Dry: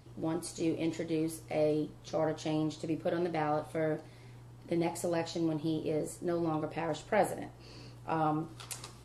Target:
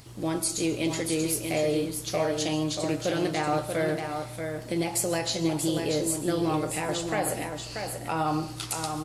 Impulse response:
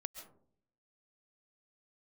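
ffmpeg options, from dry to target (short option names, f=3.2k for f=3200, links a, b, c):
-filter_complex "[0:a]tiltshelf=f=1.4k:g=-5,alimiter=level_in=3dB:limit=-24dB:level=0:latency=1:release=112,volume=-3dB,aecho=1:1:635:0.501,asplit=2[a][b];[1:a]atrim=start_sample=2205,lowshelf=f=330:g=7.5,highshelf=f=4.3k:g=11.5[c];[b][c]afir=irnorm=-1:irlink=0,volume=-5dB[d];[a][d]amix=inputs=2:normalize=0,volume=5.5dB"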